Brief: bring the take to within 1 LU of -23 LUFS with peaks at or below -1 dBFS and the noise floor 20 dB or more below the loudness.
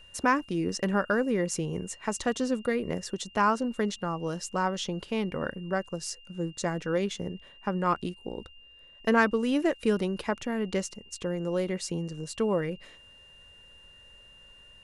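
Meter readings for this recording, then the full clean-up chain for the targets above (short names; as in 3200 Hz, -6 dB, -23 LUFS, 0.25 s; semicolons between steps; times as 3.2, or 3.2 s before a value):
steady tone 2800 Hz; tone level -52 dBFS; loudness -30.0 LUFS; peak -9.5 dBFS; loudness target -23.0 LUFS
-> notch 2800 Hz, Q 30; gain +7 dB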